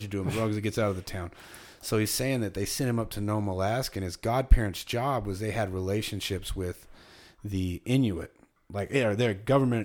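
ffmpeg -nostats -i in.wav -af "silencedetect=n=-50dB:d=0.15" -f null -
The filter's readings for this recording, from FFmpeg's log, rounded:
silence_start: 8.45
silence_end: 8.70 | silence_duration: 0.26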